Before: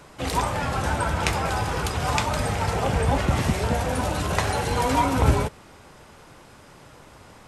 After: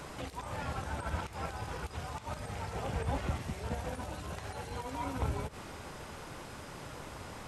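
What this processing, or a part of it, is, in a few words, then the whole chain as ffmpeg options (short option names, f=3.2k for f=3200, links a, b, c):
de-esser from a sidechain: -filter_complex "[0:a]asplit=2[a][b];[b]highpass=f=4.2k:w=0.5412,highpass=f=4.2k:w=1.3066,apad=whole_len=329525[c];[a][c]sidechaincompress=threshold=-55dB:ratio=16:attack=1:release=77,equalizer=f=74:t=o:w=0.42:g=2.5,volume=4dB"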